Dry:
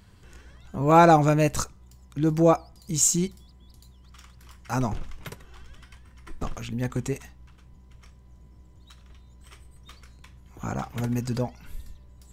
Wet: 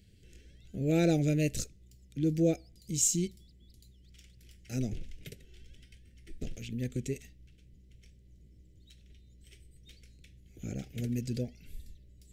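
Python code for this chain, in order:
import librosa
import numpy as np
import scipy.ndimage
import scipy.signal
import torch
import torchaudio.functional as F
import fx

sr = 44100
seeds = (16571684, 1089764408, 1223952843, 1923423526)

y = scipy.signal.sosfilt(scipy.signal.cheby1(2, 1.0, [440.0, 2400.0], 'bandstop', fs=sr, output='sos'), x)
y = F.gain(torch.from_numpy(y), -5.5).numpy()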